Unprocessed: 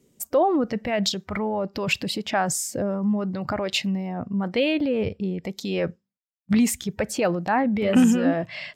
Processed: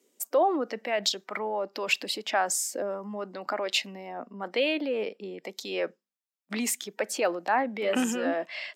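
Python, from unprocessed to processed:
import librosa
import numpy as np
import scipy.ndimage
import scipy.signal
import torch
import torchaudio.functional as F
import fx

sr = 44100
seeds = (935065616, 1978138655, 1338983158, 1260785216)

y = scipy.signal.sosfilt(scipy.signal.bessel(8, 430.0, 'highpass', norm='mag', fs=sr, output='sos'), x)
y = y * 10.0 ** (-1.5 / 20.0)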